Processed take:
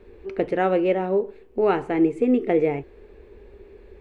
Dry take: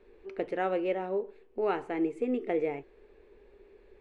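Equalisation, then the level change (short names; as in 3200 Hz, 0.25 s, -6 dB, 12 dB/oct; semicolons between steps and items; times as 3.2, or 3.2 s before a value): bell 85 Hz +11.5 dB 2.5 oct; +7.5 dB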